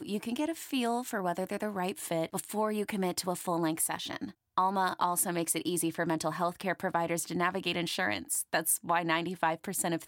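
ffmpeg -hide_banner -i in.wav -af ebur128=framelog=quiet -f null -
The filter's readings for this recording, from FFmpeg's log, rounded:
Integrated loudness:
  I:         -31.6 LUFS
  Threshold: -41.6 LUFS
Loudness range:
  LRA:         2.4 LU
  Threshold: -51.6 LUFS
  LRA low:   -33.1 LUFS
  LRA high:  -30.7 LUFS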